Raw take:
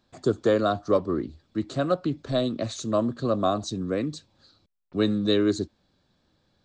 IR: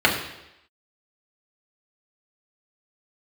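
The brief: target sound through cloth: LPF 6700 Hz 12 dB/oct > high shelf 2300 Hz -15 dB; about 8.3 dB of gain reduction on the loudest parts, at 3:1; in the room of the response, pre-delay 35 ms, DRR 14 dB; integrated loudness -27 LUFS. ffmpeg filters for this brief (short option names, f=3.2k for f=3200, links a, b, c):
-filter_complex "[0:a]acompressor=threshold=-28dB:ratio=3,asplit=2[a][b];[1:a]atrim=start_sample=2205,adelay=35[c];[b][c]afir=irnorm=-1:irlink=0,volume=-34.5dB[d];[a][d]amix=inputs=2:normalize=0,lowpass=6.7k,highshelf=f=2.3k:g=-15,volume=6dB"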